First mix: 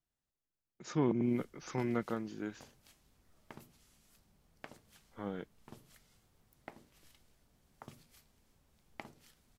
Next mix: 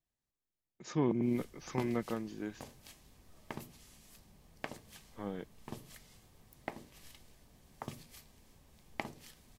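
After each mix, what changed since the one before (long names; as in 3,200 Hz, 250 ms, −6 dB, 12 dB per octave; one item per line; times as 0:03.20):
background +8.5 dB
master: add notch filter 1,400 Hz, Q 7.7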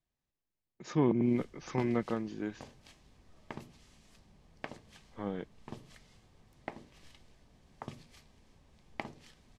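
speech +3.5 dB
master: add high-frequency loss of the air 74 metres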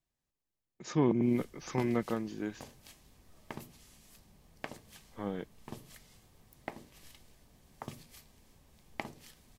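master: remove high-frequency loss of the air 74 metres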